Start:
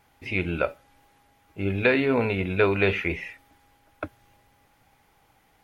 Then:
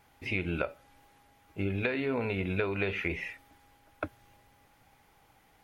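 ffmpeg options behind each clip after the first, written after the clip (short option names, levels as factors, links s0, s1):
-af "acompressor=threshold=0.0501:ratio=12,volume=0.891"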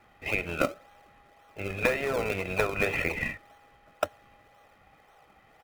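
-filter_complex "[0:a]acrossover=split=410 3200:gain=0.141 1 0.141[s0][s1][s2];[s0][s1][s2]amix=inputs=3:normalize=0,aecho=1:1:1.6:0.56,asplit=2[s3][s4];[s4]acrusher=samples=35:mix=1:aa=0.000001:lfo=1:lforange=35:lforate=1.9,volume=0.562[s5];[s3][s5]amix=inputs=2:normalize=0,volume=1.78"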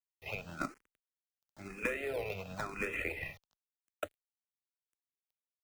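-filter_complex "[0:a]acrossover=split=450|6200[s0][s1][s2];[s2]acompressor=mode=upward:threshold=0.00141:ratio=2.5[s3];[s0][s1][s3]amix=inputs=3:normalize=0,aeval=exprs='val(0)*gte(abs(val(0)),0.00501)':c=same,asplit=2[s4][s5];[s5]afreqshift=0.98[s6];[s4][s6]amix=inputs=2:normalize=1,volume=0.447"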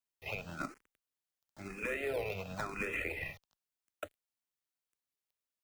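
-af "alimiter=level_in=1.5:limit=0.0631:level=0:latency=1:release=65,volume=0.668,volume=1.19"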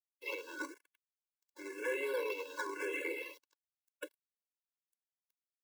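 -filter_complex "[0:a]acrossover=split=580|3700[s0][s1][s2];[s0]aeval=exprs='0.0106*(abs(mod(val(0)/0.0106+3,4)-2)-1)':c=same[s3];[s3][s1][s2]amix=inputs=3:normalize=0,acrusher=bits=10:mix=0:aa=0.000001,afftfilt=real='re*eq(mod(floor(b*sr/1024/290),2),1)':imag='im*eq(mod(floor(b*sr/1024/290),2),1)':win_size=1024:overlap=0.75,volume=1.78"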